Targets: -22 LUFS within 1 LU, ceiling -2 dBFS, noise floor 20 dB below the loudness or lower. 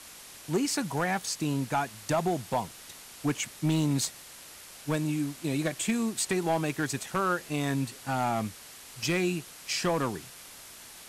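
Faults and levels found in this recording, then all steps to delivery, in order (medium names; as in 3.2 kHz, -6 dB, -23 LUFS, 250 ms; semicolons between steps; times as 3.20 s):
clipped samples 0.8%; clipping level -20.0 dBFS; noise floor -48 dBFS; noise floor target -50 dBFS; loudness -30.0 LUFS; peak level -20.0 dBFS; loudness target -22.0 LUFS
-> clip repair -20 dBFS; noise print and reduce 6 dB; trim +8 dB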